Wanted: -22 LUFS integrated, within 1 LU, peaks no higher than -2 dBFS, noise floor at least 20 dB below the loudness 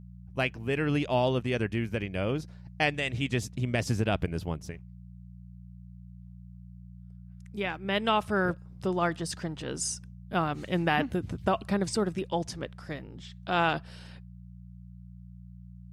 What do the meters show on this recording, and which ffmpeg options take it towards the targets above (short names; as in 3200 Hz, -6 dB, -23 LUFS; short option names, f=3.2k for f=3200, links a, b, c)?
hum 60 Hz; harmonics up to 180 Hz; hum level -45 dBFS; loudness -30.0 LUFS; peak -12.0 dBFS; loudness target -22.0 LUFS
-> -af "bandreject=f=60:t=h:w=4,bandreject=f=120:t=h:w=4,bandreject=f=180:t=h:w=4"
-af "volume=8dB"